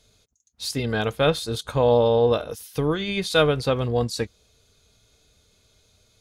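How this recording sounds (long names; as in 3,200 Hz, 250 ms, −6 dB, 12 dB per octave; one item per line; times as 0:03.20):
background noise floor −65 dBFS
spectral slope −4.5 dB per octave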